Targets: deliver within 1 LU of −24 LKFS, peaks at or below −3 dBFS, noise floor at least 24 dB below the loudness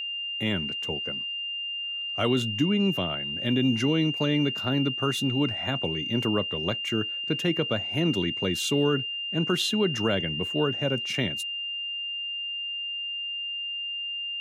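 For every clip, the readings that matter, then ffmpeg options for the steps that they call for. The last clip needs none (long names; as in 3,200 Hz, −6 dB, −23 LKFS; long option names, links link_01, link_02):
interfering tone 2,800 Hz; level of the tone −30 dBFS; integrated loudness −27.0 LKFS; sample peak −12.5 dBFS; target loudness −24.0 LKFS
→ -af "bandreject=frequency=2800:width=30"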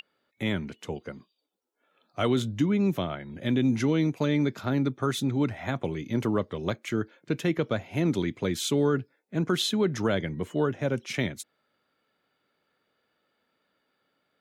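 interfering tone none found; integrated loudness −28.0 LKFS; sample peak −13.0 dBFS; target loudness −24.0 LKFS
→ -af "volume=4dB"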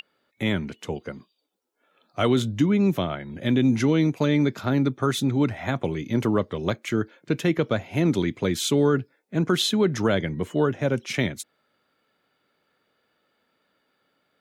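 integrated loudness −24.0 LKFS; sample peak −9.0 dBFS; background noise floor −73 dBFS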